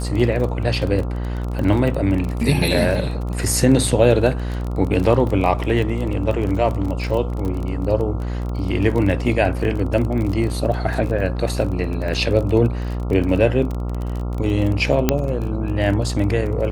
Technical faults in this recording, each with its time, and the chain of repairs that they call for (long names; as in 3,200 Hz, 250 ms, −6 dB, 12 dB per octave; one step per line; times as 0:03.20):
mains buzz 60 Hz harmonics 23 −24 dBFS
surface crackle 26 per second −24 dBFS
0:15.09: click −1 dBFS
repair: click removal
hum removal 60 Hz, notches 23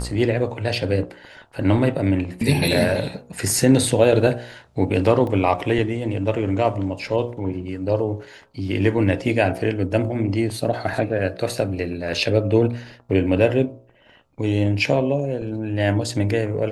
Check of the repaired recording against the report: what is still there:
none of them is left